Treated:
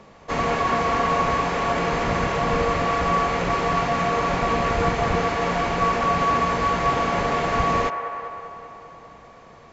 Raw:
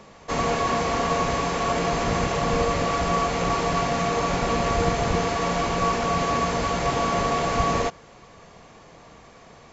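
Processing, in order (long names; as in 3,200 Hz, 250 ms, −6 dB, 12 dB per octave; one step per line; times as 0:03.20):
high-shelf EQ 5,200 Hz −10 dB
on a send: delay with a band-pass on its return 197 ms, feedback 71%, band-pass 1,000 Hz, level −8 dB
on the sum: dynamic equaliser 1,900 Hz, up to +4 dB, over −37 dBFS, Q 0.84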